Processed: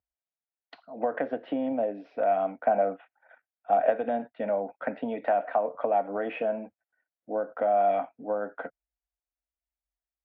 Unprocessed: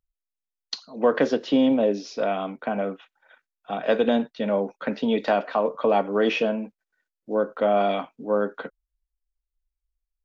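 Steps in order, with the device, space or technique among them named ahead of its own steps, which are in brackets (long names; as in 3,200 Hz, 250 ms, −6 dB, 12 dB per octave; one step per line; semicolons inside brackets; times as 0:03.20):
bass amplifier (downward compressor, threshold −23 dBFS, peak gain reduction 9 dB; loudspeaker in its box 64–2,100 Hz, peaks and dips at 150 Hz −8 dB, 210 Hz −7 dB, 390 Hz −10 dB, 700 Hz +9 dB, 1,100 Hz −7 dB)
0:02.55–0:03.90: dynamic equaliser 570 Hz, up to +4 dB, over −37 dBFS, Q 1
level −1 dB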